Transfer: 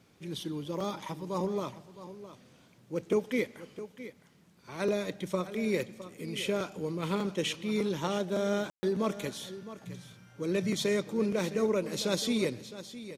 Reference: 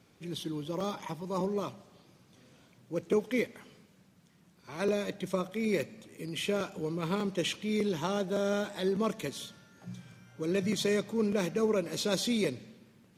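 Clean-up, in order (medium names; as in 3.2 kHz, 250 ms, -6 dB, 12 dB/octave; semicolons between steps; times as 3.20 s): room tone fill 8.70–8.83 s; inverse comb 662 ms -14 dB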